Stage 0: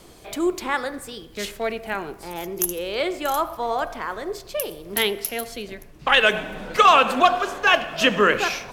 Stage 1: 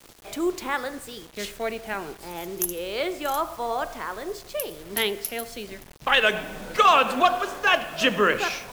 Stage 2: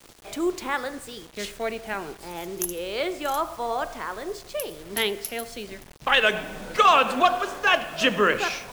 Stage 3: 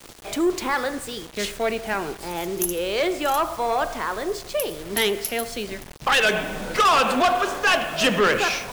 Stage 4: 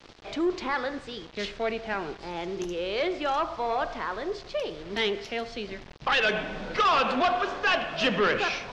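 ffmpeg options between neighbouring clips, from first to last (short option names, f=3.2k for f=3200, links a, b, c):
-af "acrusher=bits=6:mix=0:aa=0.000001,volume=-3dB"
-af "equalizer=f=13k:w=4.2:g=-7.5"
-af "asoftclip=type=tanh:threshold=-20.5dB,volume=6.5dB"
-af "lowpass=f=5k:w=0.5412,lowpass=f=5k:w=1.3066,volume=-5dB"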